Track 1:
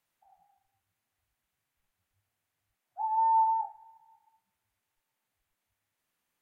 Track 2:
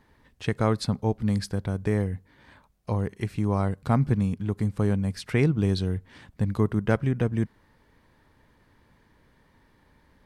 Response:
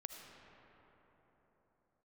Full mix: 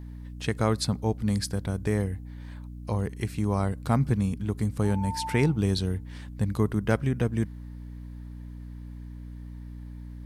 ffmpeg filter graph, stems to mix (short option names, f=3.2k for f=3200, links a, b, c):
-filter_complex "[0:a]adelay=1850,volume=-11dB[a];[1:a]aeval=exprs='val(0)+0.0141*(sin(2*PI*60*n/s)+sin(2*PI*2*60*n/s)/2+sin(2*PI*3*60*n/s)/3+sin(2*PI*4*60*n/s)/4+sin(2*PI*5*60*n/s)/5)':c=same,volume=-1.5dB[b];[a][b]amix=inputs=2:normalize=0,highshelf=f=5k:g=10.5"